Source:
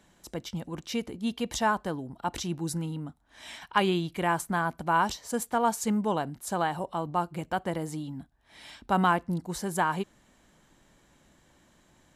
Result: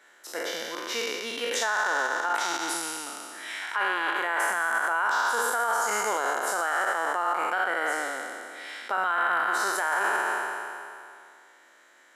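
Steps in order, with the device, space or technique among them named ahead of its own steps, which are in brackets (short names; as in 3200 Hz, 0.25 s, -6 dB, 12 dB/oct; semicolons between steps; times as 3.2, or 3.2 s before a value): spectral trails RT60 2.40 s; laptop speaker (HPF 380 Hz 24 dB/oct; bell 1400 Hz +10 dB 0.31 oct; bell 1900 Hz +8.5 dB 0.57 oct; limiter -16.5 dBFS, peak gain reduction 13.5 dB)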